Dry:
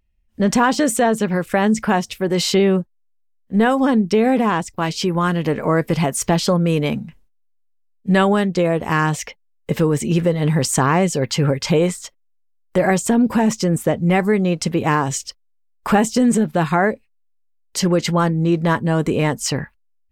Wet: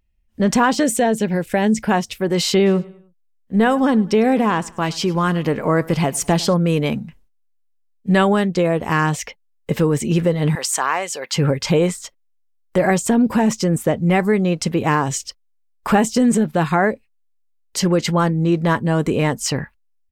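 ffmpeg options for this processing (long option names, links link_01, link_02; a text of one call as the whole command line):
ffmpeg -i in.wav -filter_complex "[0:a]asettb=1/sr,asplit=3[link_01][link_02][link_03];[link_01]atrim=end=0.834[link_04];[link_02]atrim=start=0.83:end=1.91,asetpts=PTS-STARTPTS,afade=type=in:duration=0.004:curve=qsin,afade=type=out:start_time=1.076:duration=0.004:curve=qsin,equalizer=frequency=1200:width_type=o:width=0.43:gain=-13.5[link_05];[link_03]atrim=start=1.906[link_06];[link_04][link_05]acrossfade=duration=0.004:curve1=hsin:curve2=qsin[link_07];[link_07][link_06]acrossfade=duration=0.004:curve1=qsin:curve2=hsin,asplit=3[link_08][link_09][link_10];[link_08]afade=type=out:start_time=2.65:duration=0.02[link_11];[link_09]aecho=1:1:102|204|306:0.0841|0.0345|0.0141,afade=type=in:start_time=2.65:duration=0.02,afade=type=out:start_time=6.53:duration=0.02[link_12];[link_10]afade=type=in:start_time=6.53:duration=0.02[link_13];[link_11][link_12][link_13]amix=inputs=3:normalize=0,asettb=1/sr,asplit=3[link_14][link_15][link_16];[link_14]atrim=end=10.554[link_17];[link_15]atrim=start=10.55:end=11.34,asetpts=PTS-STARTPTS,afade=type=in:duration=0.004:curve=qsin,afade=type=out:start_time=0.786:duration=0.004:curve=qsin,highpass=760[link_18];[link_16]atrim=start=11.336[link_19];[link_17][link_18]acrossfade=duration=0.004:curve1=hsin:curve2=qsin[link_20];[link_20][link_19]acrossfade=duration=0.004:curve1=qsin:curve2=hsin" out.wav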